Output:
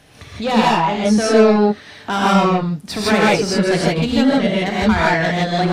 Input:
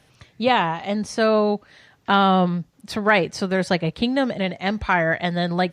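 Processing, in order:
in parallel at +2 dB: downward compressor, threshold −36 dBFS, peak gain reduction 21.5 dB
on the sum: soft clipping −15.5 dBFS, distortion −12 dB
reverb whose tail is shaped and stops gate 190 ms rising, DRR −6 dB

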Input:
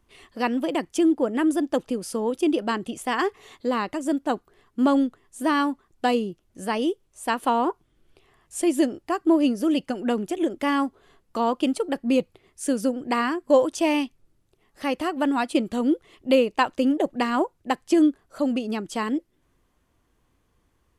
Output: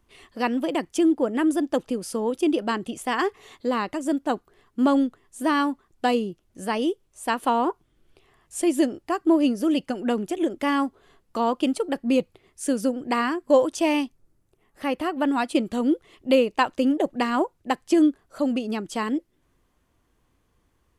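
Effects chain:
0:14.00–0:15.27: parametric band 2,400 Hz → 8,200 Hz −6.5 dB 1.2 octaves

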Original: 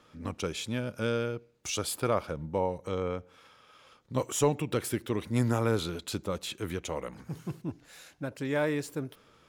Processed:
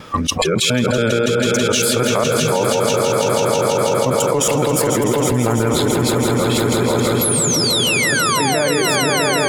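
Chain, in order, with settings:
reversed piece by piece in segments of 140 ms
sound drawn into the spectrogram fall, 0:07.21–0:08.86, 360–12,000 Hz −32 dBFS
noise reduction from a noise print of the clip's start 22 dB
echo that builds up and dies away 163 ms, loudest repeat 5, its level −9 dB
envelope flattener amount 100%
level +4.5 dB

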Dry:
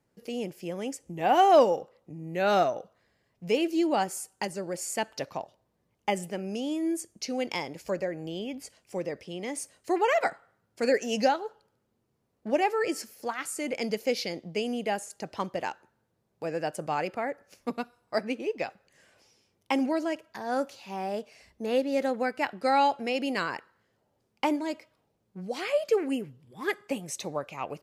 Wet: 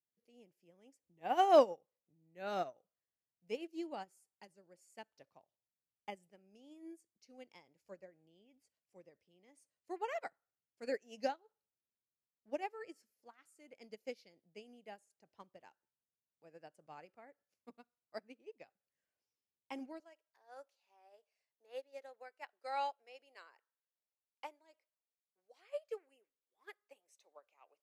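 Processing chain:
high-pass filter 52 Hz 24 dB per octave, from 0:20.00 440 Hz
expander for the loud parts 2.5 to 1, over −34 dBFS
level −5 dB

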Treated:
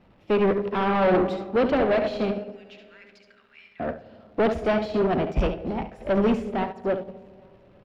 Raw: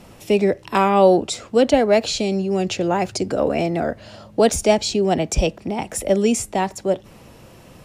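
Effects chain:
0:02.31–0:03.80: Butterworth high-pass 1,600 Hz 36 dB per octave
single-tap delay 71 ms −8.5 dB
comb and all-pass reverb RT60 2 s, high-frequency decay 0.25×, pre-delay 25 ms, DRR 10.5 dB
soft clipping −20 dBFS, distortion −6 dB
single-tap delay 835 ms −21.5 dB
surface crackle 330 per second −33 dBFS
high-frequency loss of the air 360 metres
expander for the loud parts 2.5 to 1, over −33 dBFS
level +5 dB

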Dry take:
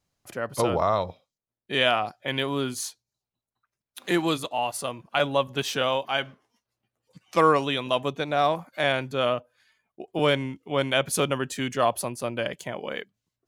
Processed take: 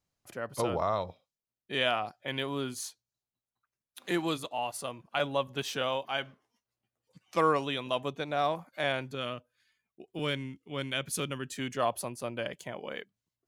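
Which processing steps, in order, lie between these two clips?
0:09.15–0:11.53: parametric band 730 Hz −10 dB 1.4 octaves
level −6.5 dB

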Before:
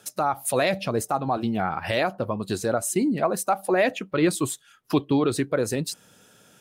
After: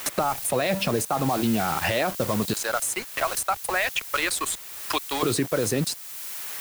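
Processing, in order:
0:02.53–0:05.23: high-pass filter 1,200 Hz 12 dB per octave
brickwall limiter −20.5 dBFS, peak gain reduction 9.5 dB
centre clipping without the shift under −38 dBFS
background noise blue −47 dBFS
multiband upward and downward compressor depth 70%
level +6 dB

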